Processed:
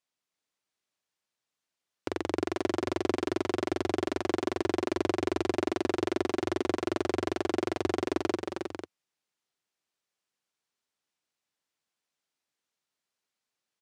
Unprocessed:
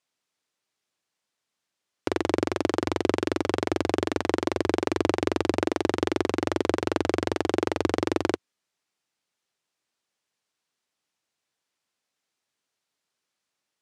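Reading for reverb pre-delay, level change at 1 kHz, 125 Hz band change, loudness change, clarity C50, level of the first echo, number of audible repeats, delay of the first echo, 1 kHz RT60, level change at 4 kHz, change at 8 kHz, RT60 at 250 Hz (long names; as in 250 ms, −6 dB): no reverb audible, −4.5 dB, −6.0 dB, −4.0 dB, no reverb audible, −5.0 dB, 2, 314 ms, no reverb audible, −5.0 dB, −5.0 dB, no reverb audible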